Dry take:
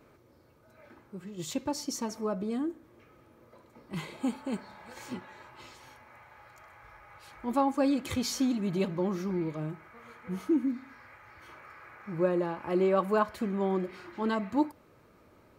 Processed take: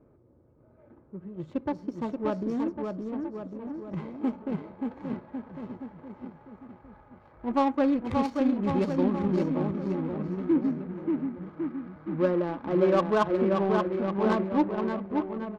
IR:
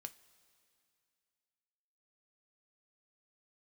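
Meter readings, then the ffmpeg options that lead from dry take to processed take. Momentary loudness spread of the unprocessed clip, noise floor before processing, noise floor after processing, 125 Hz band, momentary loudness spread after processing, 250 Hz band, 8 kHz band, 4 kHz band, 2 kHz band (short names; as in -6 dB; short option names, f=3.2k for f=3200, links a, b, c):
22 LU, -61 dBFS, -59 dBFS, +4.5 dB, 16 LU, +4.5 dB, under -15 dB, -5.0 dB, +2.0 dB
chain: -af "aecho=1:1:580|1102|1572|1995|2375:0.631|0.398|0.251|0.158|0.1,adynamicsmooth=sensitivity=2.5:basefreq=630,volume=2.5dB"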